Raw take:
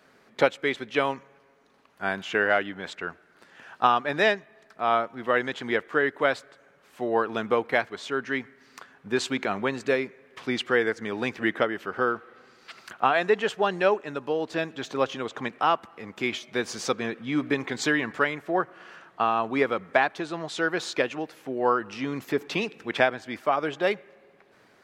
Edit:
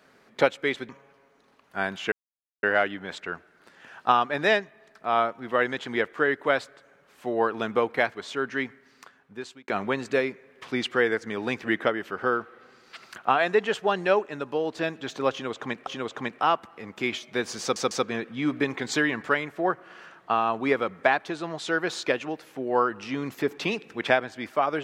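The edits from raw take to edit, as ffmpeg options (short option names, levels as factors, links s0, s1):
-filter_complex "[0:a]asplit=7[s0][s1][s2][s3][s4][s5][s6];[s0]atrim=end=0.892[s7];[s1]atrim=start=1.148:end=2.38,asetpts=PTS-STARTPTS,afade=t=out:st=1.228:d=0.004:c=hsin,apad=pad_dur=0.51[s8];[s2]atrim=start=2.38:end=9.43,asetpts=PTS-STARTPTS,afade=t=in:d=0.004:c=hsin,afade=t=out:st=6.02:d=1.03[s9];[s3]atrim=start=9.43:end=15.622,asetpts=PTS-STARTPTS,afade=t=in:d=0.004:c=hsin[s10];[s4]atrim=start=15.068:end=16.962[s11];[s5]atrim=start=16.808:end=16.962[s12];[s6]atrim=start=16.808[s13];[s8][s9][s10]concat=n=3:v=0:a=1[s14];[s7][s14]acrossfade=d=0.004:c1=hsin:c2=hsin[s15];[s15][s11]acrossfade=d=0.004:c1=hsin:c2=hsin[s16];[s16][s12]acrossfade=d=0.004:c1=hsin:c2=hsin[s17];[s17][s13]acrossfade=d=0.004:c1=hsin:c2=hsin"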